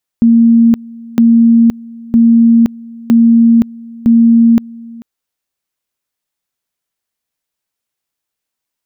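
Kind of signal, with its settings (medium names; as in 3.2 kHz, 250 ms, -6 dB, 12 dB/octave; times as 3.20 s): two-level tone 231 Hz -3.5 dBFS, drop 23.5 dB, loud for 0.52 s, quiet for 0.44 s, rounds 5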